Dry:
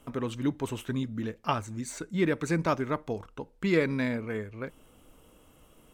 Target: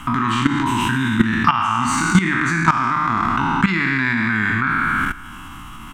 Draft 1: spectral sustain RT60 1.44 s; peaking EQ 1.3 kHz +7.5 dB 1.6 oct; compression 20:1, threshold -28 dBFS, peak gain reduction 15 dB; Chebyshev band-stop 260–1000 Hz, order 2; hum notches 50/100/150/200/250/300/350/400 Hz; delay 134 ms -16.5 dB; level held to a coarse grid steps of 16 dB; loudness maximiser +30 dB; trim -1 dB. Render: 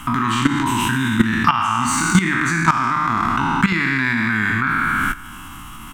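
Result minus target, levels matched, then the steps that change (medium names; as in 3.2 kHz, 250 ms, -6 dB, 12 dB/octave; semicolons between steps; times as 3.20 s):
8 kHz band +4.0 dB
add after Chebyshev band-stop: treble shelf 7.6 kHz -10.5 dB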